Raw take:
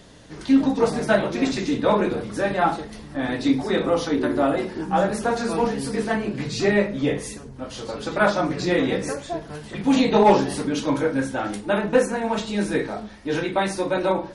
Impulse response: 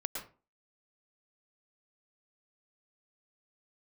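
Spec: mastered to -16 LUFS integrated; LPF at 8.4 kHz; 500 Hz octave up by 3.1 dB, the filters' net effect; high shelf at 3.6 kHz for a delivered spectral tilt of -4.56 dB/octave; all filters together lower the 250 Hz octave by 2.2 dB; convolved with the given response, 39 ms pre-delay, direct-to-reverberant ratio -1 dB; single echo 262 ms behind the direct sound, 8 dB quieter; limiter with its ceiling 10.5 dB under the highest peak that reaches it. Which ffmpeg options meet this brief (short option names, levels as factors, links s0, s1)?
-filter_complex "[0:a]lowpass=8400,equalizer=f=250:t=o:g=-4,equalizer=f=500:t=o:g=4.5,highshelf=f=3600:g=6.5,alimiter=limit=0.211:level=0:latency=1,aecho=1:1:262:0.398,asplit=2[s0][s1];[1:a]atrim=start_sample=2205,adelay=39[s2];[s1][s2]afir=irnorm=-1:irlink=0,volume=0.944[s3];[s0][s3]amix=inputs=2:normalize=0,volume=1.58"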